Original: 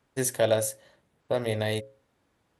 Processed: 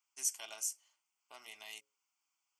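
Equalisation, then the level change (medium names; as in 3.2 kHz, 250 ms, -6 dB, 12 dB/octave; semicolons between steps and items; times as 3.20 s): high-pass 360 Hz 12 dB/octave; differentiator; static phaser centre 2.6 kHz, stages 8; +1.0 dB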